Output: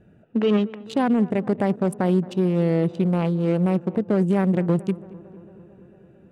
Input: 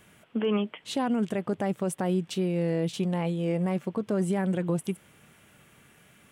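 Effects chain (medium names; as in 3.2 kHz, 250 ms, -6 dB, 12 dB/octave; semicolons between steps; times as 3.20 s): local Wiener filter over 41 samples; treble shelf 8.1 kHz -7 dB; on a send: tape echo 224 ms, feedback 84%, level -17.5 dB, low-pass 1.5 kHz; on the sum: trim +7.5 dB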